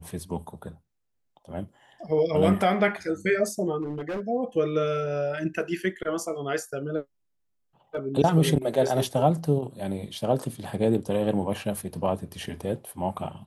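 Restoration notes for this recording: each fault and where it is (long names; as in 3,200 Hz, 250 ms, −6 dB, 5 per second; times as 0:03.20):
0:03.81–0:04.21: clipping −27.5 dBFS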